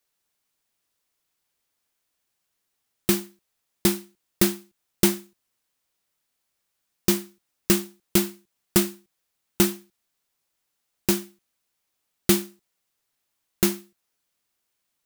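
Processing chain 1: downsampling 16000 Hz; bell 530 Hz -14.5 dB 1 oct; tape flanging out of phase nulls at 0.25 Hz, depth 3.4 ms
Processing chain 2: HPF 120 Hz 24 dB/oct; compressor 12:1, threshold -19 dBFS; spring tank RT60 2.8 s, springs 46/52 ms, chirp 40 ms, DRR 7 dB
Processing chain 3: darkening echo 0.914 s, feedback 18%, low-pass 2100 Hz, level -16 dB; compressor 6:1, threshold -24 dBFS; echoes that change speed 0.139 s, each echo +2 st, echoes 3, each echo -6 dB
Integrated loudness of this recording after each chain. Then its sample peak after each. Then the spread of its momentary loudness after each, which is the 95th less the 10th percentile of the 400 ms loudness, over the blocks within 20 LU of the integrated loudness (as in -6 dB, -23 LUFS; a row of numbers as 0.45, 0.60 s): -31.5, -29.5, -34.0 LUFS; -10.0, -4.5, -5.0 dBFS; 10, 18, 14 LU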